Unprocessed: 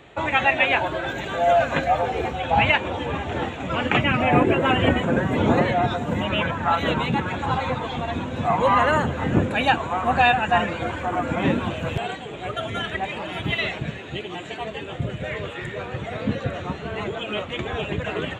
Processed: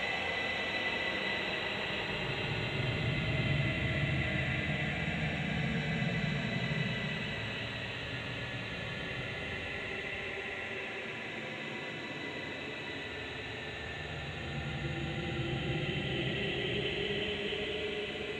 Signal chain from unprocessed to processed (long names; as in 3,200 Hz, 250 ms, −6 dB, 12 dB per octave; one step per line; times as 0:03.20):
feedback echo with a high-pass in the loop 152 ms, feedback 64%, high-pass 590 Hz, level −7 dB
extreme stretch with random phases 38×, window 0.10 s, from 0:13.73
level −6 dB